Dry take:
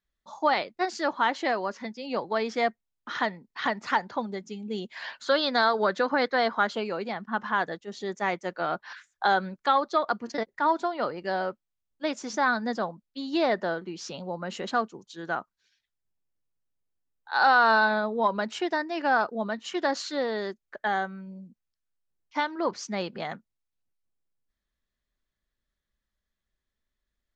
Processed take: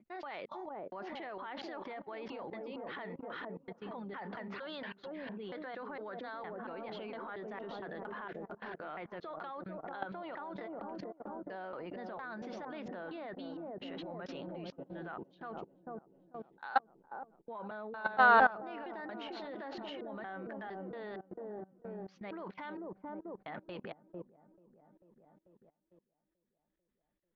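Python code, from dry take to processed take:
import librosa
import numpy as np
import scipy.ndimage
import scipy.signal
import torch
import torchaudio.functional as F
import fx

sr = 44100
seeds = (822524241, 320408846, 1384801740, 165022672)

p1 = fx.block_reorder(x, sr, ms=230.0, group=4)
p2 = fx.dynamic_eq(p1, sr, hz=230.0, q=5.7, threshold_db=-49.0, ratio=4.0, max_db=-4)
p3 = scipy.signal.sosfilt(scipy.signal.butter(4, 3200.0, 'lowpass', fs=sr, output='sos'), p2)
p4 = fx.low_shelf(p3, sr, hz=160.0, db=-5.0)
p5 = fx.transient(p4, sr, attack_db=-5, sustain_db=5)
p6 = p5 + fx.echo_wet_lowpass(p5, sr, ms=443, feedback_pct=54, hz=560.0, wet_db=-3.5, dry=0)
p7 = fx.level_steps(p6, sr, step_db=21)
y = F.gain(torch.from_numpy(p7), -1.5).numpy()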